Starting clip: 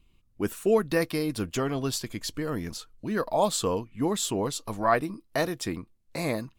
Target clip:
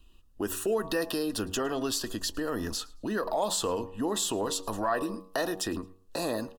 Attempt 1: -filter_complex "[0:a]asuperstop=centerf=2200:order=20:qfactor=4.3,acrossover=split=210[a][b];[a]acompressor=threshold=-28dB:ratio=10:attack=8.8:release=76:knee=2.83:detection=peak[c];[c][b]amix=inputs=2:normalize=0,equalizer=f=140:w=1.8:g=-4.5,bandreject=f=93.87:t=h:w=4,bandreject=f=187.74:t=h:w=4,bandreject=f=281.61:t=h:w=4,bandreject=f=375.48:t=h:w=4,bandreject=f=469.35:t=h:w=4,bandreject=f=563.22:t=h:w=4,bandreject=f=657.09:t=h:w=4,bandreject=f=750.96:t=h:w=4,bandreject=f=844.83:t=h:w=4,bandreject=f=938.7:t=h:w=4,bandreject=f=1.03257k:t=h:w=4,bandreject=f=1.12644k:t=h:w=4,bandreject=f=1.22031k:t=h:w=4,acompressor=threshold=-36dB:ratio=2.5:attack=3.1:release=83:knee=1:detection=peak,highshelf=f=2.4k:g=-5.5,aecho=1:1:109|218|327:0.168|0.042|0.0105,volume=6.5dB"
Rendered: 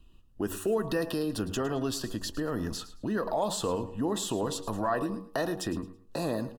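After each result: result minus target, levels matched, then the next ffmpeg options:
125 Hz band +6.0 dB; echo-to-direct +9 dB; 4000 Hz band -3.5 dB
-filter_complex "[0:a]asuperstop=centerf=2200:order=20:qfactor=4.3,acrossover=split=210[a][b];[a]acompressor=threshold=-28dB:ratio=10:attack=8.8:release=76:knee=2.83:detection=peak[c];[c][b]amix=inputs=2:normalize=0,equalizer=f=140:w=1.8:g=-15.5,bandreject=f=93.87:t=h:w=4,bandreject=f=187.74:t=h:w=4,bandreject=f=281.61:t=h:w=4,bandreject=f=375.48:t=h:w=4,bandreject=f=469.35:t=h:w=4,bandreject=f=563.22:t=h:w=4,bandreject=f=657.09:t=h:w=4,bandreject=f=750.96:t=h:w=4,bandreject=f=844.83:t=h:w=4,bandreject=f=938.7:t=h:w=4,bandreject=f=1.03257k:t=h:w=4,bandreject=f=1.12644k:t=h:w=4,bandreject=f=1.22031k:t=h:w=4,acompressor=threshold=-36dB:ratio=2.5:attack=3.1:release=83:knee=1:detection=peak,highshelf=f=2.4k:g=-5.5,aecho=1:1:109|218|327:0.168|0.042|0.0105,volume=6.5dB"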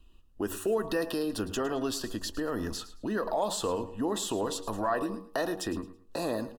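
echo-to-direct +9 dB; 4000 Hz band -3.0 dB
-filter_complex "[0:a]asuperstop=centerf=2200:order=20:qfactor=4.3,acrossover=split=210[a][b];[a]acompressor=threshold=-28dB:ratio=10:attack=8.8:release=76:knee=2.83:detection=peak[c];[c][b]amix=inputs=2:normalize=0,equalizer=f=140:w=1.8:g=-15.5,bandreject=f=93.87:t=h:w=4,bandreject=f=187.74:t=h:w=4,bandreject=f=281.61:t=h:w=4,bandreject=f=375.48:t=h:w=4,bandreject=f=469.35:t=h:w=4,bandreject=f=563.22:t=h:w=4,bandreject=f=657.09:t=h:w=4,bandreject=f=750.96:t=h:w=4,bandreject=f=844.83:t=h:w=4,bandreject=f=938.7:t=h:w=4,bandreject=f=1.03257k:t=h:w=4,bandreject=f=1.12644k:t=h:w=4,bandreject=f=1.22031k:t=h:w=4,acompressor=threshold=-36dB:ratio=2.5:attack=3.1:release=83:knee=1:detection=peak,highshelf=f=2.4k:g=-5.5,aecho=1:1:109|218:0.0596|0.0149,volume=6.5dB"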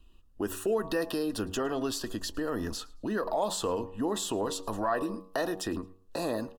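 4000 Hz band -3.0 dB
-filter_complex "[0:a]asuperstop=centerf=2200:order=20:qfactor=4.3,acrossover=split=210[a][b];[a]acompressor=threshold=-28dB:ratio=10:attack=8.8:release=76:knee=2.83:detection=peak[c];[c][b]amix=inputs=2:normalize=0,equalizer=f=140:w=1.8:g=-15.5,bandreject=f=93.87:t=h:w=4,bandreject=f=187.74:t=h:w=4,bandreject=f=281.61:t=h:w=4,bandreject=f=375.48:t=h:w=4,bandreject=f=469.35:t=h:w=4,bandreject=f=563.22:t=h:w=4,bandreject=f=657.09:t=h:w=4,bandreject=f=750.96:t=h:w=4,bandreject=f=844.83:t=h:w=4,bandreject=f=938.7:t=h:w=4,bandreject=f=1.03257k:t=h:w=4,bandreject=f=1.12644k:t=h:w=4,bandreject=f=1.22031k:t=h:w=4,acompressor=threshold=-36dB:ratio=2.5:attack=3.1:release=83:knee=1:detection=peak,aecho=1:1:109|218:0.0596|0.0149,volume=6.5dB"

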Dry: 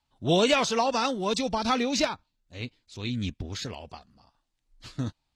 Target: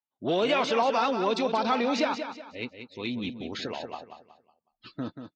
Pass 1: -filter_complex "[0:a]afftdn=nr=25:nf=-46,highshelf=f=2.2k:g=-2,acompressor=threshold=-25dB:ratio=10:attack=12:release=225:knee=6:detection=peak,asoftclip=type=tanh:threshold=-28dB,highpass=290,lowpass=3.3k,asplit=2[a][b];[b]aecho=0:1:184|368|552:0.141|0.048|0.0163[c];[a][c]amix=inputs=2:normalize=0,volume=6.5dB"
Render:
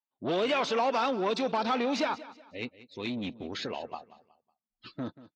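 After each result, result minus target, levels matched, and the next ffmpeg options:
soft clip: distortion +9 dB; echo-to-direct -8.5 dB
-filter_complex "[0:a]afftdn=nr=25:nf=-46,highshelf=f=2.2k:g=-2,acompressor=threshold=-25dB:ratio=10:attack=12:release=225:knee=6:detection=peak,asoftclip=type=tanh:threshold=-21dB,highpass=290,lowpass=3.3k,asplit=2[a][b];[b]aecho=0:1:184|368|552:0.141|0.048|0.0163[c];[a][c]amix=inputs=2:normalize=0,volume=6.5dB"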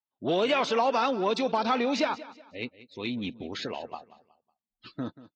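echo-to-direct -8.5 dB
-filter_complex "[0:a]afftdn=nr=25:nf=-46,highshelf=f=2.2k:g=-2,acompressor=threshold=-25dB:ratio=10:attack=12:release=225:knee=6:detection=peak,asoftclip=type=tanh:threshold=-21dB,highpass=290,lowpass=3.3k,asplit=2[a][b];[b]aecho=0:1:184|368|552|736:0.376|0.128|0.0434|0.0148[c];[a][c]amix=inputs=2:normalize=0,volume=6.5dB"

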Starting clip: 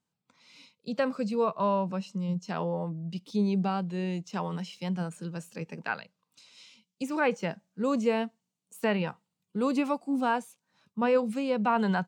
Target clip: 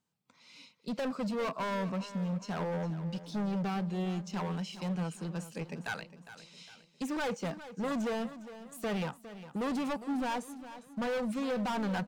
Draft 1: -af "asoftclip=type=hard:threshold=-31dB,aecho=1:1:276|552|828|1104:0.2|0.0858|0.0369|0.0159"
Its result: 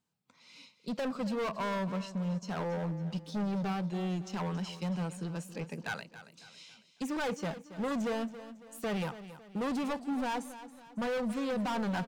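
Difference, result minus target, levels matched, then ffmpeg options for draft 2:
echo 0.131 s early
-af "asoftclip=type=hard:threshold=-31dB,aecho=1:1:407|814|1221|1628:0.2|0.0858|0.0369|0.0159"

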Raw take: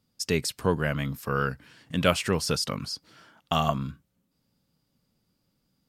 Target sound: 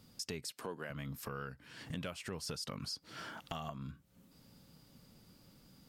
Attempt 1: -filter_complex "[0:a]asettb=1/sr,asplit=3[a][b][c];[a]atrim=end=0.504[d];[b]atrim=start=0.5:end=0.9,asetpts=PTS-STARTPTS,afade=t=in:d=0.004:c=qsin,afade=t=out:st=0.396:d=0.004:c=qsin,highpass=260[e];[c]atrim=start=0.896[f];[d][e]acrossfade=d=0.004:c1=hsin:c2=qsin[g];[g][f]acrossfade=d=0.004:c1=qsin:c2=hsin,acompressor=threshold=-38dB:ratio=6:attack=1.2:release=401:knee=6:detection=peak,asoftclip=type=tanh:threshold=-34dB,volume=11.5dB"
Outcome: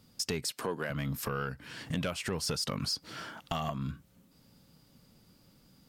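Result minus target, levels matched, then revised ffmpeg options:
compressor: peak gain reduction -9.5 dB
-filter_complex "[0:a]asettb=1/sr,asplit=3[a][b][c];[a]atrim=end=0.504[d];[b]atrim=start=0.5:end=0.9,asetpts=PTS-STARTPTS,afade=t=in:d=0.004:c=qsin,afade=t=out:st=0.396:d=0.004:c=qsin,highpass=260[e];[c]atrim=start=0.896[f];[d][e]acrossfade=d=0.004:c1=hsin:c2=qsin[g];[g][f]acrossfade=d=0.004:c1=qsin:c2=hsin,acompressor=threshold=-49.5dB:ratio=6:attack=1.2:release=401:knee=6:detection=peak,asoftclip=type=tanh:threshold=-34dB,volume=11.5dB"

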